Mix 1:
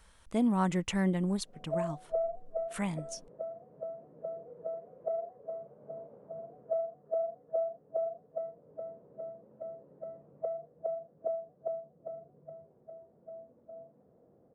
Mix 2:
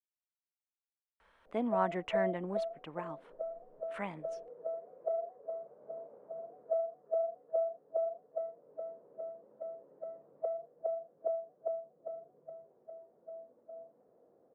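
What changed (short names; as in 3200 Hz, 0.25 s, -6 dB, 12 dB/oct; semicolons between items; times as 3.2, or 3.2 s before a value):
speech: entry +1.20 s; master: add three-band isolator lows -16 dB, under 300 Hz, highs -24 dB, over 2900 Hz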